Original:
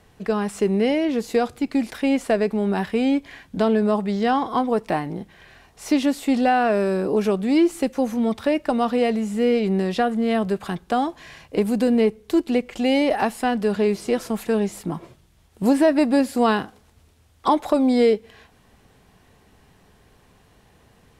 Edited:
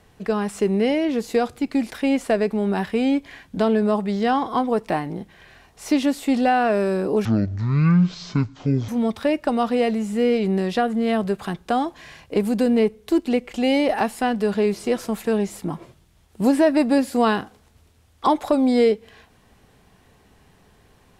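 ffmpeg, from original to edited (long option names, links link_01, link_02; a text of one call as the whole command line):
ffmpeg -i in.wav -filter_complex "[0:a]asplit=3[link_01][link_02][link_03];[link_01]atrim=end=7.254[link_04];[link_02]atrim=start=7.25:end=8.1,asetpts=PTS-STARTPTS,asetrate=22932,aresample=44100[link_05];[link_03]atrim=start=8.096[link_06];[link_04][link_05]acrossfade=duration=0.004:curve1=hsin:curve2=hsin[link_07];[link_07][link_06]acrossfade=duration=0.004:curve1=hsin:curve2=hsin" out.wav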